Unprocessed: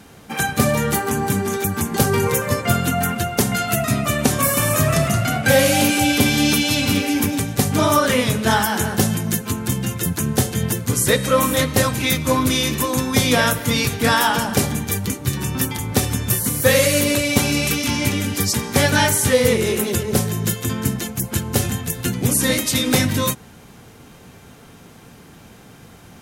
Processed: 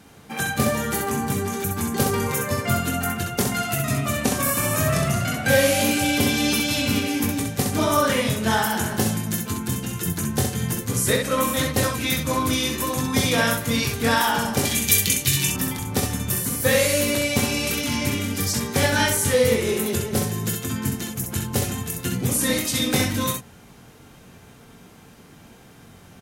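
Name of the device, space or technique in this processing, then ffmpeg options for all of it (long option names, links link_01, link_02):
slapback doubling: -filter_complex "[0:a]asettb=1/sr,asplit=3[link_01][link_02][link_03];[link_01]atrim=end=14.654[link_04];[link_02]atrim=start=14.65:end=15.5,asetpts=PTS-STARTPTS,afade=type=in:duration=0.004:curve=qsin,afade=type=out:start_time=0.846:duration=0.004:curve=qsin,highshelf=frequency=1800:width_type=q:width=1.5:gain=11.5[link_05];[link_03]atrim=start=15.496[link_06];[link_04][link_05]acrossfade=duration=0.004:curve1=hsin:curve2=qsin[link_07];[link_07][link_06]acrossfade=duration=0.004:curve1=qsin:curve2=hsin,asplit=3[link_08][link_09][link_10];[link_09]adelay=22,volume=-7dB[link_11];[link_10]adelay=65,volume=-4.5dB[link_12];[link_08][link_11][link_12]amix=inputs=3:normalize=0,volume=-5.5dB"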